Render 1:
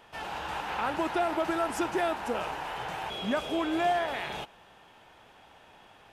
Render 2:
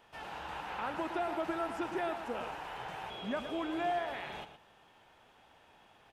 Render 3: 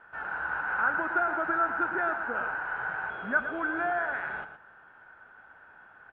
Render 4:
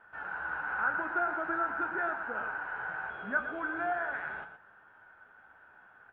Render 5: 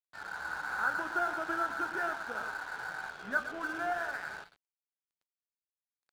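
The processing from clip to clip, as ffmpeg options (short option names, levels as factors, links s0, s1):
-filter_complex "[0:a]acrossover=split=3700[s0][s1];[s1]acompressor=threshold=0.00251:ratio=4:attack=1:release=60[s2];[s0][s2]amix=inputs=2:normalize=0,asplit=2[s3][s4];[s4]adelay=116.6,volume=0.316,highshelf=f=4000:g=-2.62[s5];[s3][s5]amix=inputs=2:normalize=0,volume=0.447"
-af "lowpass=f=1500:t=q:w=14"
-af "flanger=delay=9:depth=8.2:regen=61:speed=0.41:shape=triangular"
-af "aeval=exprs='sgn(val(0))*max(abs(val(0))-0.00447,0)':c=same"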